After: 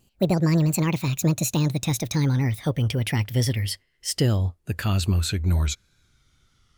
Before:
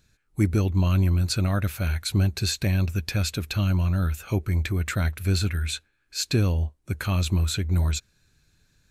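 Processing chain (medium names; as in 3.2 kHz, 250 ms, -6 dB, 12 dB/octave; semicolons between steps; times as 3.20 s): gliding tape speed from 182% -> 81%; wow and flutter 24 cents; trim +1 dB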